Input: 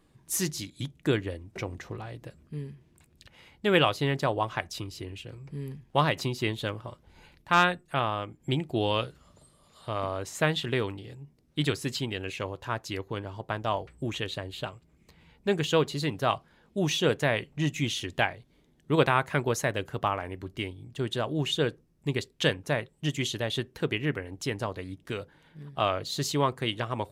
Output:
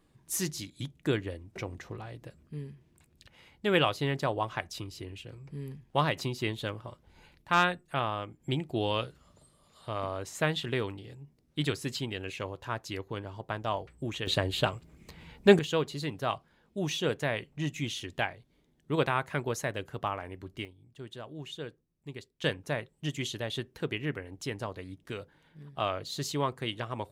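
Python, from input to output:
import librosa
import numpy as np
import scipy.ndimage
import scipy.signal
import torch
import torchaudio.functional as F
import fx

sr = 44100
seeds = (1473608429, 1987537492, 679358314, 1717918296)

y = fx.gain(x, sr, db=fx.steps((0.0, -3.0), (14.27, 7.5), (15.59, -5.0), (20.65, -13.5), (22.44, -4.5)))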